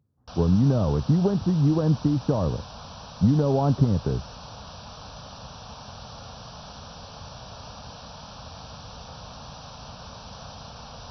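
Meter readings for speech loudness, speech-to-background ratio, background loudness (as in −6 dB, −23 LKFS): −23.0 LKFS, 18.5 dB, −41.5 LKFS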